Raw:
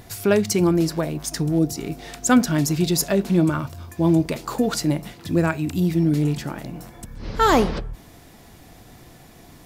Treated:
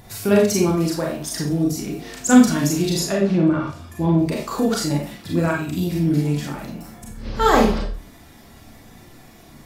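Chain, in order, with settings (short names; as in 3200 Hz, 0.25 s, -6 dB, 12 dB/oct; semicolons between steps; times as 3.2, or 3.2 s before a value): bin magnitudes rounded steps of 15 dB; 2.97–4.19 treble ducked by the level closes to 2400 Hz, closed at -14 dBFS; Schroeder reverb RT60 0.37 s, combs from 28 ms, DRR -2 dB; gain -2 dB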